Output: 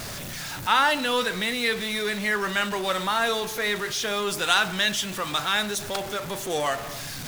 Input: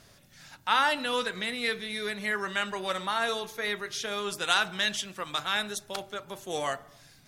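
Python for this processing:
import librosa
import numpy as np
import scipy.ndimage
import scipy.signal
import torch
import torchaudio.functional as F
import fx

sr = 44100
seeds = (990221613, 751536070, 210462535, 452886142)

y = x + 0.5 * 10.0 ** (-33.0 / 20.0) * np.sign(x)
y = y * librosa.db_to_amplitude(3.0)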